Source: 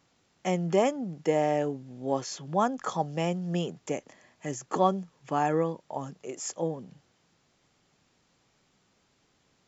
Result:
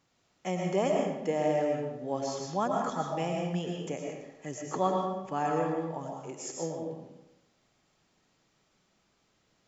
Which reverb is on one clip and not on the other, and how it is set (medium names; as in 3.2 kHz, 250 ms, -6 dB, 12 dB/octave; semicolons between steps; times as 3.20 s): algorithmic reverb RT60 0.95 s, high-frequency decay 0.75×, pre-delay 75 ms, DRR 0 dB; trim -5 dB